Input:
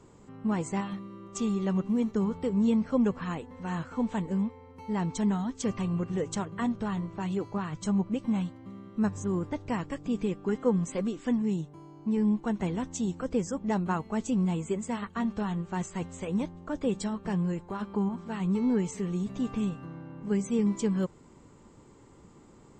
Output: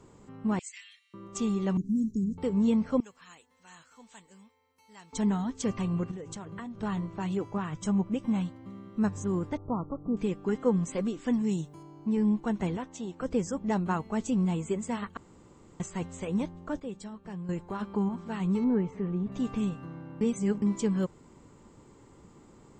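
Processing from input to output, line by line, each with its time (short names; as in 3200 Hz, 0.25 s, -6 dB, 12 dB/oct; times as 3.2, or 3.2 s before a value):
0.59–1.14 steep high-pass 2100 Hz
1.77–2.38 elliptic band-stop 290–6000 Hz, stop band 50 dB
3–5.13 pre-emphasis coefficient 0.97
6.11–6.83 compressor 12:1, threshold -36 dBFS
7.37–8.3 Butterworth band-stop 4300 Hz, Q 7
9.57–10.17 brick-wall FIR low-pass 1400 Hz
11.33–11.83 high shelf 4300 Hz +10.5 dB
12.77–13.21 tone controls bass -13 dB, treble -10 dB
15.17–15.8 room tone
16.8–17.49 gain -10 dB
18.64–19.32 LPF 1700 Hz
20.21–20.62 reverse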